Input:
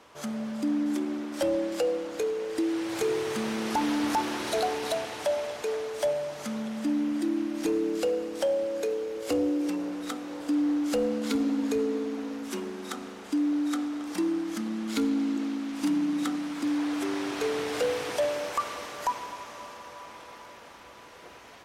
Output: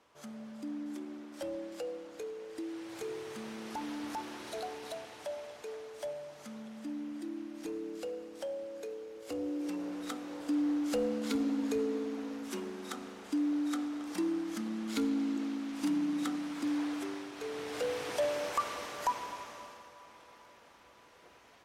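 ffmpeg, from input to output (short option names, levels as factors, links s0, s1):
-af "volume=1.88,afade=t=in:st=9.28:d=0.7:silence=0.421697,afade=t=out:st=16.8:d=0.51:silence=0.375837,afade=t=in:st=17.31:d=1.15:silence=0.298538,afade=t=out:st=19.35:d=0.57:silence=0.421697"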